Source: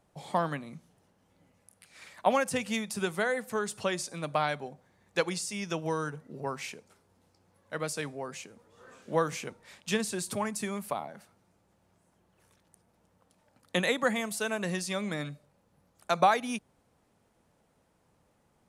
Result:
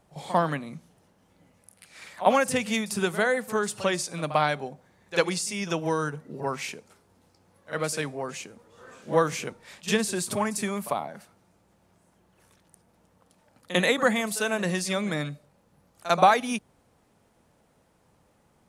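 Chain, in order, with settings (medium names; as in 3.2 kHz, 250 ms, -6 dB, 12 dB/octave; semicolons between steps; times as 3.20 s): reverse echo 47 ms -14.5 dB; trim +5 dB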